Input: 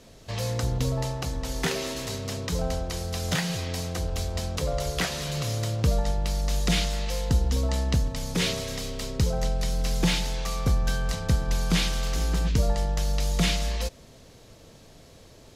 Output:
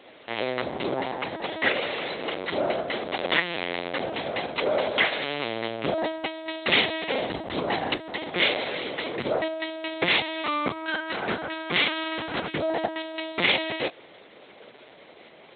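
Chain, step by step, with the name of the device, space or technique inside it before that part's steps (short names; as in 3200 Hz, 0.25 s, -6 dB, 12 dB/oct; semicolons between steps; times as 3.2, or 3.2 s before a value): talking toy (LPC vocoder at 8 kHz pitch kept; HPF 390 Hz 12 dB/oct; bell 2100 Hz +6 dB 0.31 oct); gain +6.5 dB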